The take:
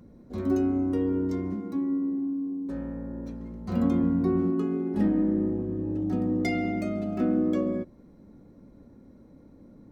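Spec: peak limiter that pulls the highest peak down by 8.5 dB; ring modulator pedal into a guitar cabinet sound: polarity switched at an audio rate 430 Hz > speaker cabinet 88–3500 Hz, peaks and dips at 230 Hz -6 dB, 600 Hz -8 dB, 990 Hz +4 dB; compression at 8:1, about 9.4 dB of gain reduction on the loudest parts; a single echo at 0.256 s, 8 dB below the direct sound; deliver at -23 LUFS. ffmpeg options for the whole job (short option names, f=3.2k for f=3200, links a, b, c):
-af "acompressor=threshold=-30dB:ratio=8,alimiter=level_in=7dB:limit=-24dB:level=0:latency=1,volume=-7dB,aecho=1:1:256:0.398,aeval=exprs='val(0)*sgn(sin(2*PI*430*n/s))':c=same,highpass=88,equalizer=f=230:t=q:w=4:g=-6,equalizer=f=600:t=q:w=4:g=-8,equalizer=f=990:t=q:w=4:g=4,lowpass=f=3.5k:w=0.5412,lowpass=f=3.5k:w=1.3066,volume=16dB"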